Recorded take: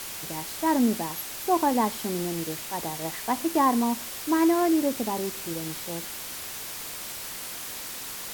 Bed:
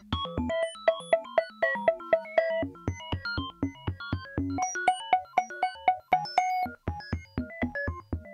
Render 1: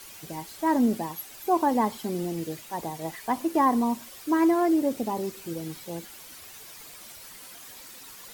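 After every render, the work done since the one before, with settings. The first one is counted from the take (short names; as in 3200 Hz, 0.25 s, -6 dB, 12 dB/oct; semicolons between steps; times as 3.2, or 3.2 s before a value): denoiser 11 dB, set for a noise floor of -37 dBFS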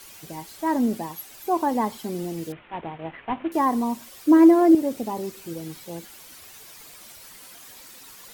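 2.52–3.52 CVSD 16 kbps; 4.26–4.75 small resonant body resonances 290/550 Hz, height 13 dB, ringing for 40 ms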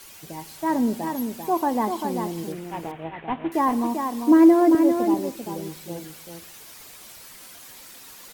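echo 0.393 s -6 dB; plate-style reverb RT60 0.64 s, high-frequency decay 0.5×, pre-delay 0.11 s, DRR 19.5 dB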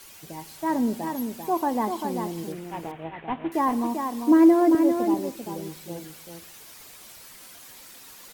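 gain -2 dB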